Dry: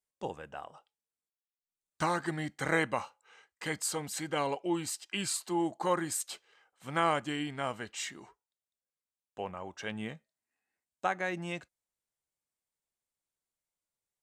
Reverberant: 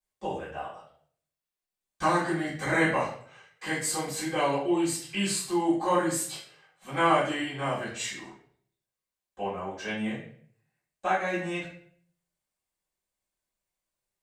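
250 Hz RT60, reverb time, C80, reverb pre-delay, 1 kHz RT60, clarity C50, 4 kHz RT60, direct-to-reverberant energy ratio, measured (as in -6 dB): 0.60 s, 0.55 s, 8.5 dB, 3 ms, 0.50 s, 4.0 dB, 0.45 s, -13.0 dB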